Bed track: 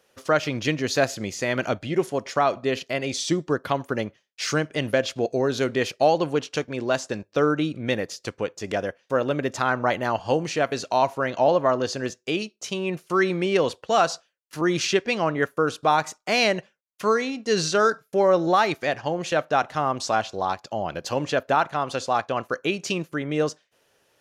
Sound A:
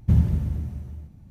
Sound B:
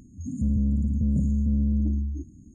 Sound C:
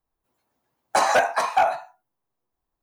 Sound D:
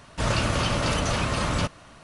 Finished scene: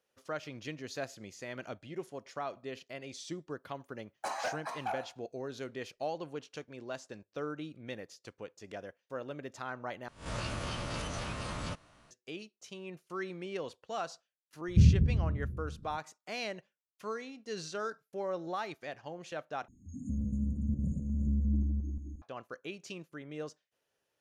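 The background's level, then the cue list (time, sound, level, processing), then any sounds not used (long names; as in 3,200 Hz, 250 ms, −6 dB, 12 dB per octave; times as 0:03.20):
bed track −17.5 dB
0:03.29: mix in C −17.5 dB
0:10.08: overwrite with D −14.5 dB + peak hold with a rise ahead of every peak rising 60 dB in 0.36 s
0:14.68: mix in A −3 dB + Butterworth low-pass 500 Hz 48 dB per octave
0:19.68: overwrite with B −10.5 dB + feedback delay that plays each chunk backwards 177 ms, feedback 41%, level −3 dB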